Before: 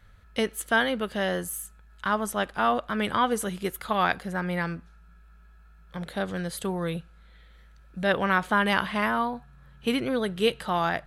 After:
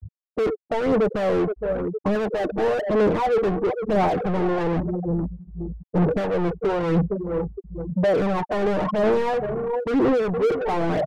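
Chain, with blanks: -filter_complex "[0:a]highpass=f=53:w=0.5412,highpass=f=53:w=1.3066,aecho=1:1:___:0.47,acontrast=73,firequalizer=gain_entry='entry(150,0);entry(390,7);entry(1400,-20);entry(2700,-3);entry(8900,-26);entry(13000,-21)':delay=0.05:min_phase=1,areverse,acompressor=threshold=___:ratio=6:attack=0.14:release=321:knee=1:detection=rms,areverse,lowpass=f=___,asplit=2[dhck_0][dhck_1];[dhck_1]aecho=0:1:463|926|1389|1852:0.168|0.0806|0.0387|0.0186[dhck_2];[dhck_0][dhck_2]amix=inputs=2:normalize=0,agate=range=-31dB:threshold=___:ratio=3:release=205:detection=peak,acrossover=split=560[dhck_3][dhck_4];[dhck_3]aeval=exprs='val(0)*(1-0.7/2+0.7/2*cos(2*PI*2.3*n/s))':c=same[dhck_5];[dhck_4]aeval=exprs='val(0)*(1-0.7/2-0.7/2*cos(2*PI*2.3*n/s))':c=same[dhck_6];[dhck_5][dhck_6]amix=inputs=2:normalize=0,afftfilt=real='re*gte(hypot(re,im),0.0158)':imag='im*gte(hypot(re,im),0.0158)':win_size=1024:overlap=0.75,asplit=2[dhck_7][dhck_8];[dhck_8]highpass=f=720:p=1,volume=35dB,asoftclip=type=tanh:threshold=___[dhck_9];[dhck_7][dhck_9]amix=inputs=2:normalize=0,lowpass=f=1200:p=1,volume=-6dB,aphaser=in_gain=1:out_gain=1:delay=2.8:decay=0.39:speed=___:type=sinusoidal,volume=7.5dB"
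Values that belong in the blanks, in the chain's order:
6.5, -26dB, 1700, -55dB, -23.5dB, 0.99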